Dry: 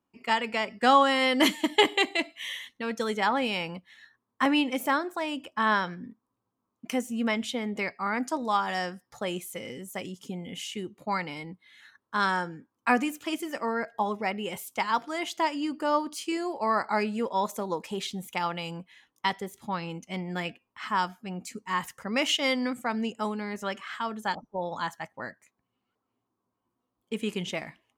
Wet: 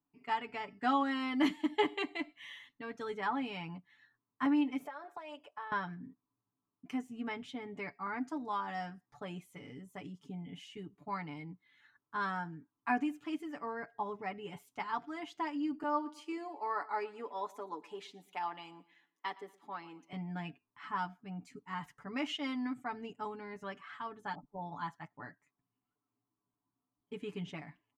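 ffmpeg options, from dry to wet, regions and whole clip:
ffmpeg -i in.wav -filter_complex "[0:a]asettb=1/sr,asplit=3[link_01][link_02][link_03];[link_01]atrim=end=4.854[link_04];[link_02]atrim=start=4.85:end=5.72,asetpts=PTS-STARTPTS,afade=type=in:duration=0.004:curve=qsin,afade=type=out:start_time=0.866:duration=0.004:curve=qsin,lowshelf=frequency=360:width_type=q:width=3:gain=-12.5,acompressor=threshold=-29dB:ratio=12:attack=3.2:release=140:knee=1:detection=peak[link_05];[link_03]atrim=start=5.716[link_06];[link_04][link_05]acrossfade=duration=0.004:curve1=hsin:curve2=qsin[link_07];[link_07][link_06]acrossfade=duration=0.004:curve1=qsin:curve2=hsin,asettb=1/sr,asplit=3[link_08][link_09][link_10];[link_08]atrim=end=15.834[link_11];[link_09]atrim=start=15.83:end=20.13,asetpts=PTS-STARTPTS,afade=type=in:duration=0.004:curve=qsin,afade=type=out:start_time=4.296:duration=0.004:curve=qsin,highpass=frequency=290:width=0.5412,highpass=frequency=290:width=1.3066,aecho=1:1:116|232|348:0.0891|0.0321|0.0116,atrim=end_sample=189630[link_12];[link_10]atrim=start=20.126[link_13];[link_11][link_12]acrossfade=duration=0.004:curve1=hsin:curve2=qsin[link_14];[link_14][link_13]acrossfade=duration=0.004:curve1=qsin:curve2=hsin,lowpass=frequency=1100:poles=1,equalizer=frequency=520:width_type=o:width=0.39:gain=-13,aecho=1:1:6.9:0.79,volume=-7.5dB" out.wav

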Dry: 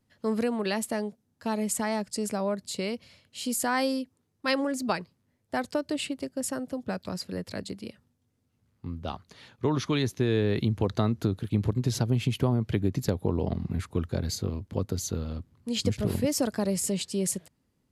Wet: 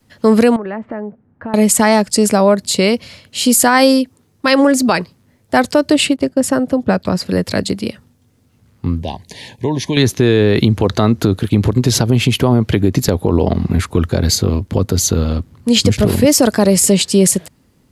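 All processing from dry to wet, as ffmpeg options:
ffmpeg -i in.wav -filter_complex "[0:a]asettb=1/sr,asplit=3[link_01][link_02][link_03];[link_01]atrim=end=0.564[link_04];[link_02]atrim=start=0.56:end=1.54,asetpts=PTS-STARTPTS,afade=type=in:duration=0.004:curve=qsin,afade=type=out:start_time=0.976:duration=0.004:curve=qsin,lowpass=frequency=1800:width=0.5412,lowpass=frequency=1800:width=1.3066,acompressor=threshold=-44dB:ratio=3:attack=3.2:release=140:knee=1:detection=peak[link_05];[link_03]atrim=start=1.536[link_06];[link_04][link_05]acrossfade=duration=0.004:curve1=hsin:curve2=qsin[link_07];[link_07][link_06]acrossfade=duration=0.004:curve1=qsin:curve2=hsin,asettb=1/sr,asplit=3[link_08][link_09][link_10];[link_08]atrim=end=6.164[link_11];[link_09]atrim=start=6.16:end=7.26,asetpts=PTS-STARTPTS,afade=type=in:duration=0.004:curve=qsin,afade=type=out:start_time=1.096:duration=0.004:curve=qsin,agate=range=-10dB:threshold=-53dB:ratio=16:release=100:detection=peak,highshelf=frequency=3200:gain=-8.5[link_12];[link_10]atrim=start=7.256[link_13];[link_11][link_12]acrossfade=duration=0.004:curve1=hsin:curve2=qsin[link_14];[link_14][link_13]acrossfade=duration=0.004:curve1=qsin:curve2=hsin,asettb=1/sr,asplit=3[link_15][link_16][link_17];[link_15]atrim=end=9.024[link_18];[link_16]atrim=start=9.02:end=9.97,asetpts=PTS-STARTPTS,afade=type=in:duration=0.004:curve=qsin,afade=type=out:start_time=0.946:duration=0.004:curve=qsin,equalizer=frequency=9500:width_type=o:width=0.88:gain=5.5,acompressor=threshold=-49dB:ratio=1.5:attack=3.2:release=140:knee=1:detection=peak,asuperstop=centerf=1300:order=8:qfactor=2.1[link_19];[link_17]atrim=start=9.966[link_20];[link_18][link_19]acrossfade=duration=0.004:curve1=hsin:curve2=qsin[link_21];[link_21][link_20]acrossfade=duration=0.004:curve1=qsin:curve2=hsin,adynamicequalizer=threshold=0.0112:dfrequency=130:dqfactor=0.98:tfrequency=130:tqfactor=0.98:attack=5:release=100:ratio=0.375:range=2.5:mode=cutabove:tftype=bell,alimiter=level_in=19.5dB:limit=-1dB:release=50:level=0:latency=1,volume=-1dB" out.wav

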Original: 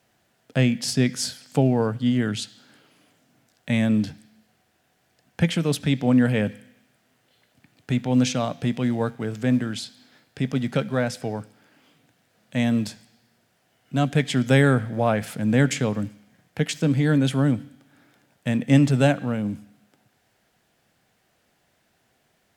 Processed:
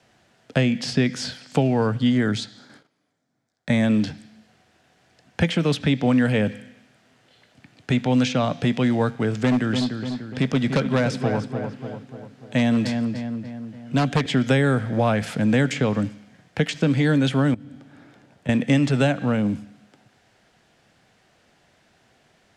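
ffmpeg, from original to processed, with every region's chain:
ffmpeg -i in.wav -filter_complex "[0:a]asettb=1/sr,asplit=3[link_01][link_02][link_03];[link_01]atrim=end=2.104[link_04];[link_02]atrim=start=2.1:end=3.84,asetpts=PTS-STARTPTS,afade=type=in:duration=0.004:curve=qsin,afade=type=out:start_time=1.736:duration=0.004:curve=qsin,equalizer=frequency=2800:width=4.3:gain=-12,agate=range=-19dB:threshold=-57dB:ratio=16:release=100:detection=peak[link_05];[link_03]atrim=start=3.836[link_06];[link_04][link_05]acrossfade=duration=0.004:curve1=hsin:curve2=qsin[link_07];[link_07][link_06]acrossfade=duration=0.004:curve1=qsin:curve2=hsin,asettb=1/sr,asplit=3[link_08][link_09][link_10];[link_08]atrim=end=9.334[link_11];[link_09]atrim=start=9.33:end=14.26,asetpts=PTS-STARTPTS,afade=type=in:duration=0.004:curve=qsin,afade=type=out:start_time=4.926:duration=0.004:curve=qsin,aeval=exprs='0.178*(abs(mod(val(0)/0.178+3,4)-2)-1)':channel_layout=same,asplit=2[link_12][link_13];[link_13]adelay=294,lowpass=frequency=2400:poles=1,volume=-9dB,asplit=2[link_14][link_15];[link_15]adelay=294,lowpass=frequency=2400:poles=1,volume=0.54,asplit=2[link_16][link_17];[link_17]adelay=294,lowpass=frequency=2400:poles=1,volume=0.54,asplit=2[link_18][link_19];[link_19]adelay=294,lowpass=frequency=2400:poles=1,volume=0.54,asplit=2[link_20][link_21];[link_21]adelay=294,lowpass=frequency=2400:poles=1,volume=0.54,asplit=2[link_22][link_23];[link_23]adelay=294,lowpass=frequency=2400:poles=1,volume=0.54[link_24];[link_12][link_14][link_16][link_18][link_20][link_22][link_24]amix=inputs=7:normalize=0,atrim=end_sample=217413[link_25];[link_10]atrim=start=14.256[link_26];[link_11][link_25]acrossfade=duration=0.004:curve1=hsin:curve2=qsin[link_27];[link_27][link_26]acrossfade=duration=0.004:curve1=qsin:curve2=hsin,asettb=1/sr,asplit=3[link_28][link_29][link_30];[link_28]atrim=end=17.544[link_31];[link_29]atrim=start=17.54:end=18.49,asetpts=PTS-STARTPTS,afade=type=in:duration=0.004:curve=qsin,afade=type=out:start_time=0.946:duration=0.004:curve=qsin,tiltshelf=frequency=1100:gain=3.5,acompressor=threshold=-43dB:ratio=3:attack=3.2:release=140:knee=1:detection=peak[link_32];[link_30]atrim=start=18.486[link_33];[link_31][link_32]acrossfade=duration=0.004:curve1=hsin:curve2=qsin[link_34];[link_34][link_33]acrossfade=duration=0.004:curve1=qsin:curve2=hsin,lowpass=7000,acrossover=split=270|1100|3800[link_35][link_36][link_37][link_38];[link_35]acompressor=threshold=-29dB:ratio=4[link_39];[link_36]acompressor=threshold=-29dB:ratio=4[link_40];[link_37]acompressor=threshold=-35dB:ratio=4[link_41];[link_38]acompressor=threshold=-45dB:ratio=4[link_42];[link_39][link_40][link_41][link_42]amix=inputs=4:normalize=0,volume=7dB" out.wav

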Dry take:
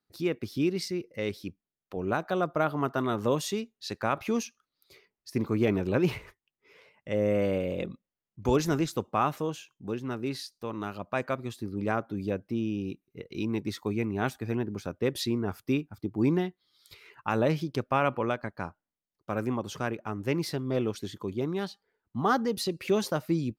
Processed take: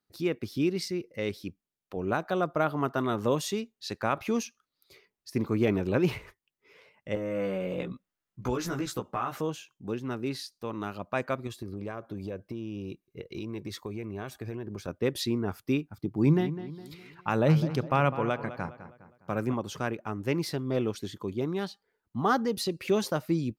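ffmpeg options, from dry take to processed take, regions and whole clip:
ffmpeg -i in.wav -filter_complex "[0:a]asettb=1/sr,asplit=3[link_01][link_02][link_03];[link_01]atrim=end=7.154[link_04];[link_02]atrim=start=7.15:end=9.41,asetpts=PTS-STARTPTS,afade=type=in:duration=0.004:curve=qsin,afade=type=out:start_time=2.256:duration=0.004:curve=qsin,equalizer=frequency=1400:width=1.6:gain=6,acompressor=threshold=-30dB:ratio=4:attack=3.2:release=140:knee=1:detection=peak,asplit=2[link_05][link_06];[link_06]adelay=16,volume=-2.5dB[link_07];[link_05][link_07]amix=inputs=2:normalize=0,atrim=end_sample=99666[link_08];[link_03]atrim=start=9.406[link_09];[link_04][link_08]acrossfade=duration=0.004:curve1=hsin:curve2=qsin[link_10];[link_10][link_09]acrossfade=duration=0.004:curve1=qsin:curve2=hsin,asettb=1/sr,asplit=3[link_11][link_12][link_13];[link_11]atrim=end=11.474[link_14];[link_12]atrim=start=11.47:end=14.88,asetpts=PTS-STARTPTS,afade=type=in:duration=0.004:curve=qsin,afade=type=out:start_time=3.406:duration=0.004:curve=qsin,equalizer=frequency=350:width=5.6:gain=5,aecho=1:1:1.8:0.34,atrim=end_sample=150381,acompressor=threshold=-32dB:ratio=10:attack=3.2:release=140:knee=1:detection=peak[link_15];[link_13]atrim=start=14.876[link_16];[link_14][link_15]acrossfade=duration=0.004:curve1=hsin:curve2=qsin[link_17];[link_17][link_16]acrossfade=duration=0.004:curve1=qsin:curve2=hsin,asettb=1/sr,asplit=3[link_18][link_19][link_20];[link_18]atrim=end=15.964[link_21];[link_19]atrim=start=15.96:end=19.54,asetpts=PTS-STARTPTS,afade=type=in:duration=0.004:curve=qsin,afade=type=out:start_time=3.576:duration=0.004:curve=qsin,equalizer=frequency=150:width=6.1:gain=11.5,asplit=2[link_22][link_23];[link_23]adelay=205,lowpass=frequency=3200:poles=1,volume=-12.5dB,asplit=2[link_24][link_25];[link_25]adelay=205,lowpass=frequency=3200:poles=1,volume=0.44,asplit=2[link_26][link_27];[link_27]adelay=205,lowpass=frequency=3200:poles=1,volume=0.44,asplit=2[link_28][link_29];[link_29]adelay=205,lowpass=frequency=3200:poles=1,volume=0.44[link_30];[link_22][link_24][link_26][link_28][link_30]amix=inputs=5:normalize=0,atrim=end_sample=157878[link_31];[link_20]atrim=start=19.536[link_32];[link_21][link_31]acrossfade=duration=0.004:curve1=hsin:curve2=qsin[link_33];[link_33][link_32]acrossfade=duration=0.004:curve1=qsin:curve2=hsin" out.wav

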